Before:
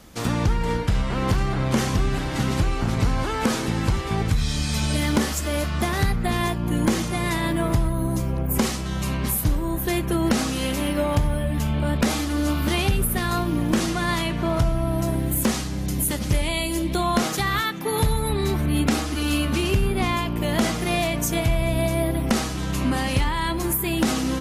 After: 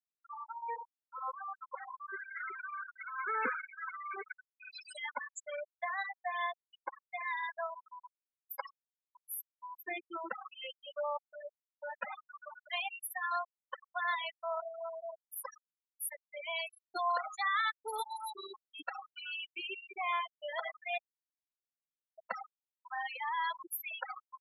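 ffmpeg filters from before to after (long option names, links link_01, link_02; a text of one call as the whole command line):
ffmpeg -i in.wav -filter_complex "[0:a]asettb=1/sr,asplit=3[link_01][link_02][link_03];[link_01]atrim=end=2.084[link_04];[link_02]atrim=start=2.08:end=4.73,asetpts=PTS-STARTPTS,afade=type=in:duration=0.004:curve=qsin,afade=type=out:start_time=2.646:duration=0.004:curve=qsin,highpass=frequency=170:width=0.5412,highpass=frequency=170:width=1.3066,equalizer=frequency=270:width_type=q:width=4:gain=8,equalizer=frequency=420:width_type=q:width=4:gain=6,equalizer=frequency=800:width_type=q:width=4:gain=-5,equalizer=frequency=1500:width_type=q:width=4:gain=7,equalizer=frequency=2200:width_type=q:width=4:gain=5,equalizer=frequency=3500:width_type=q:width=4:gain=-7,lowpass=frequency=3900:width=0.5412,lowpass=frequency=3900:width=1.3066[link_05];[link_03]atrim=start=4.726[link_06];[link_04][link_05]acrossfade=duration=0.004:curve1=hsin:curve2=qsin[link_07];[link_07][link_06]acrossfade=duration=0.004:curve1=qsin:curve2=hsin,asplit=3[link_08][link_09][link_10];[link_08]atrim=end=20.98,asetpts=PTS-STARTPTS,afade=type=out:start_time=20.976:duration=0.004:curve=hsin[link_11];[link_09]atrim=start=20.98:end=22.18,asetpts=PTS-STARTPTS,volume=0[link_12];[link_10]atrim=start=22.18,asetpts=PTS-STARTPTS,afade=type=in:duration=0.004:curve=hsin[link_13];[link_11][link_12][link_13]concat=n=3:v=0:a=1,highpass=910,afftfilt=real='re*gte(hypot(re,im),0.112)':imag='im*gte(hypot(re,im),0.112)':win_size=1024:overlap=0.75,highshelf=frequency=2400:gain=-9.5,volume=-2.5dB" out.wav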